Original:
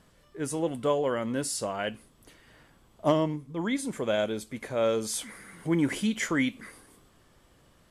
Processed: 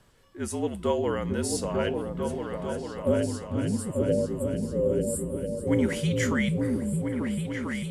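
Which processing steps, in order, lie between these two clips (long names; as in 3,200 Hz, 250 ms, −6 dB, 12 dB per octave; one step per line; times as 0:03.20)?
frequency shifter −52 Hz
time-frequency box erased 0:02.76–0:05.67, 620–7,100 Hz
echo whose low-pass opens from repeat to repeat 447 ms, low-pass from 200 Hz, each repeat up 2 octaves, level 0 dB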